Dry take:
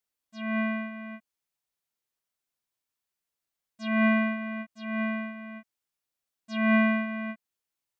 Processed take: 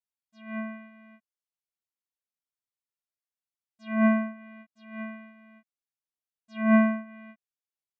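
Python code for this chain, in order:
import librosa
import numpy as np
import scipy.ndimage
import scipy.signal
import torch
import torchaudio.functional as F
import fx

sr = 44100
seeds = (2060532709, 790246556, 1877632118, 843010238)

y = fx.env_lowpass_down(x, sr, base_hz=1400.0, full_db=-23.5)
y = fx.upward_expand(y, sr, threshold_db=-32.0, expansion=2.5)
y = F.gain(torch.from_numpy(y), 4.5).numpy()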